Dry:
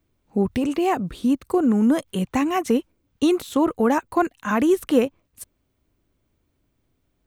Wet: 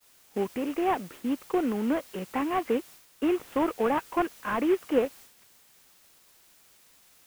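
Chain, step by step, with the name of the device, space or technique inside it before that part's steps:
army field radio (band-pass filter 340–2,900 Hz; variable-slope delta modulation 16 kbit/s; white noise bed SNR 22 dB)
downward expander −42 dBFS
level −3 dB

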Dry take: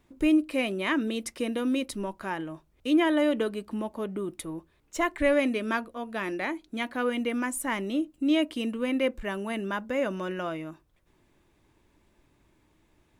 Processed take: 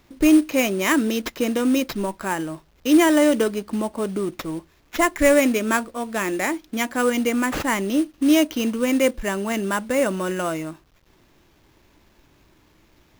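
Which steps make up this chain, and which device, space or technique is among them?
early companding sampler (sample-rate reduction 9,100 Hz, jitter 0%; log-companded quantiser 6 bits)
level +7.5 dB

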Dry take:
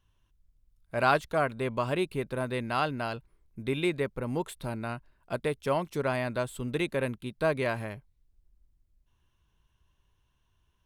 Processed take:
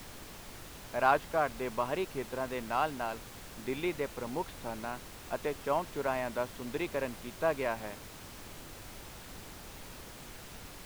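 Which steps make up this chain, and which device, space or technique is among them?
horn gramophone (band-pass filter 200–3,400 Hz; parametric band 850 Hz +6 dB; tape wow and flutter; pink noise bed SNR 11 dB)
level −5 dB

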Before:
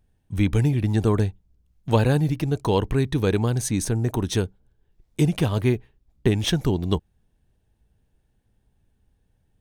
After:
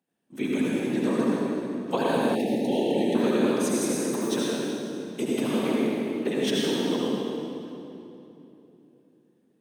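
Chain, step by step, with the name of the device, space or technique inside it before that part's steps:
whispering ghost (random phases in short frames; high-pass filter 230 Hz 24 dB per octave; convolution reverb RT60 3.1 s, pre-delay 66 ms, DRR −5.5 dB)
0:02.35–0:03.15: Chebyshev band-stop filter 860–1,800 Hz, order 4
level −6.5 dB

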